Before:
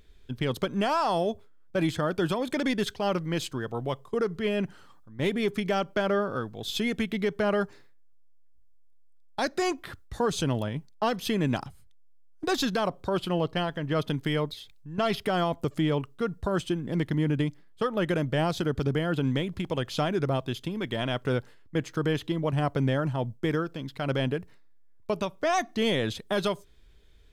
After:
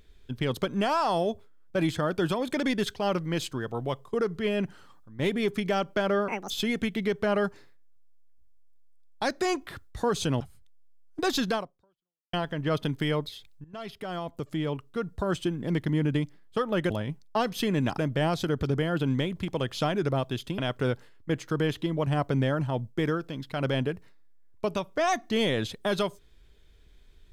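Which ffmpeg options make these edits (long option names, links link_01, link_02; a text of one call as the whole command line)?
ffmpeg -i in.wav -filter_complex "[0:a]asplit=9[link_01][link_02][link_03][link_04][link_05][link_06][link_07][link_08][link_09];[link_01]atrim=end=6.284[link_10];[link_02]atrim=start=6.28:end=6.67,asetpts=PTS-STARTPTS,asetrate=77175,aresample=44100[link_11];[link_03]atrim=start=6.666:end=10.572[link_12];[link_04]atrim=start=11.648:end=13.58,asetpts=PTS-STARTPTS,afade=type=out:start_time=1.152:duration=0.78:curve=exp[link_13];[link_05]atrim=start=13.58:end=14.89,asetpts=PTS-STARTPTS,afade=type=in:duration=0.004:curve=hsin,afade=type=out:start_time=1.306:duration=0.004:curve=hsin:silence=0.149624[link_14];[link_06]atrim=start=14.89:end=18.152,asetpts=PTS-STARTPTS,afade=type=in:duration=1.8:silence=0.149624[link_15];[link_07]atrim=start=10.568:end=11.652[link_16];[link_08]atrim=start=18.148:end=20.752[link_17];[link_09]atrim=start=21.038[link_18];[link_10][link_11]acrossfade=duration=0.004:curve1=hsin:curve2=hsin[link_19];[link_19][link_12]acrossfade=duration=0.004:curve1=hsin:curve2=hsin[link_20];[link_13][link_14][link_15]concat=n=3:v=0:a=1[link_21];[link_20][link_21]acrossfade=duration=0.004:curve1=hsin:curve2=hsin[link_22];[link_22][link_16]acrossfade=duration=0.004:curve1=hsin:curve2=hsin[link_23];[link_23][link_17]acrossfade=duration=0.004:curve1=hsin:curve2=hsin[link_24];[link_24][link_18]acrossfade=duration=0.004:curve1=hsin:curve2=hsin" out.wav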